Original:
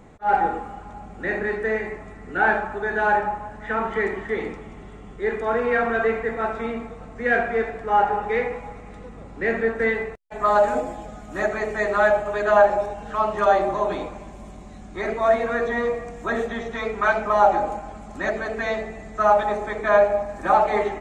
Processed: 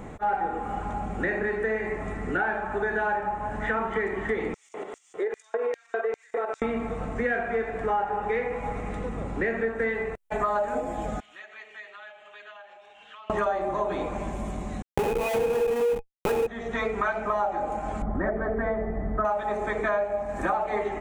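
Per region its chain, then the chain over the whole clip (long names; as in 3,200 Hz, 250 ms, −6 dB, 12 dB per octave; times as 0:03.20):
0:04.54–0:06.62: shaped tremolo saw up 6.8 Hz, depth 60% + downward compressor 5 to 1, threshold −33 dBFS + auto-filter high-pass square 2.5 Hz 460–5,900 Hz
0:11.20–0:13.30: downward compressor 4 to 1, threshold −32 dBFS + resonant band-pass 3,100 Hz, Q 4.1
0:14.82–0:16.47: comparator with hysteresis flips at −25.5 dBFS + hollow resonant body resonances 470/830/2,500 Hz, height 17 dB, ringing for 55 ms
0:18.02–0:19.25: Savitzky-Golay smoothing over 41 samples + spectral tilt −2 dB per octave
whole clip: downward compressor 6 to 1, threshold −33 dBFS; parametric band 4,700 Hz −6.5 dB 0.79 octaves; level +8 dB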